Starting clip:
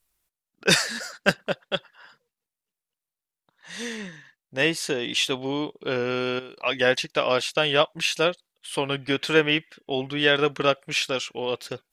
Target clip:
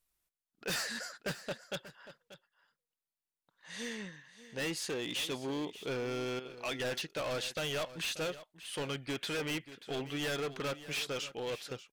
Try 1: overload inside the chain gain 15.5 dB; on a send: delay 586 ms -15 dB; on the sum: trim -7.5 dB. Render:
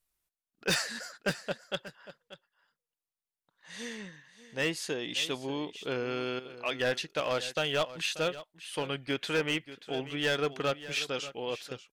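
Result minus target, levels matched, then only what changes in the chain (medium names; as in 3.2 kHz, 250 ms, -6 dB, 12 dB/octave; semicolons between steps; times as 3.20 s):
overload inside the chain: distortion -9 dB
change: overload inside the chain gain 25.5 dB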